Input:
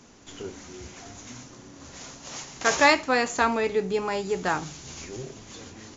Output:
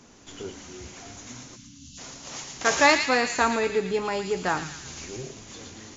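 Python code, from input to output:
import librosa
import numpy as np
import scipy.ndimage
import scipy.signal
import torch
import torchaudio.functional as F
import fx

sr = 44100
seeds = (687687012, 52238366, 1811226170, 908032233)

p1 = fx.spec_erase(x, sr, start_s=1.56, length_s=0.42, low_hz=280.0, high_hz=2600.0)
y = p1 + fx.echo_wet_highpass(p1, sr, ms=113, feedback_pct=55, hz=2200.0, wet_db=-4, dry=0)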